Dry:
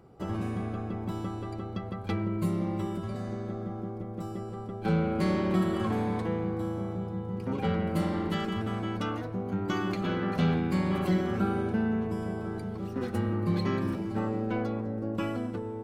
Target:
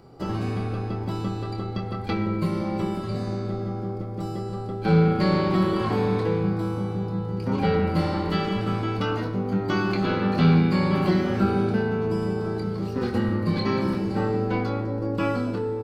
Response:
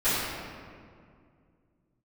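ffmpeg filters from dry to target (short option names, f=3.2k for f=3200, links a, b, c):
-filter_complex "[0:a]acrossover=split=4000[a][b];[b]acompressor=threshold=-59dB:ratio=4:attack=1:release=60[c];[a][c]amix=inputs=2:normalize=0,equalizer=f=4.6k:w=3.9:g=11.5,asplit=2[d][e];[e]adelay=25,volume=-6dB[f];[d][f]amix=inputs=2:normalize=0,asplit=2[g][h];[1:a]atrim=start_sample=2205,asetrate=70560,aresample=44100[i];[h][i]afir=irnorm=-1:irlink=0,volume=-18.5dB[j];[g][j]amix=inputs=2:normalize=0,volume=4.5dB"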